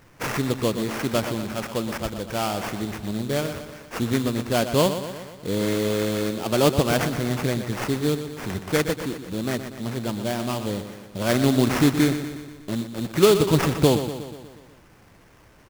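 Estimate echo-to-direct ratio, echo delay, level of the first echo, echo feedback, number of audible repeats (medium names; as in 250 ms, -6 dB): -8.0 dB, 121 ms, -10.0 dB, 58%, 6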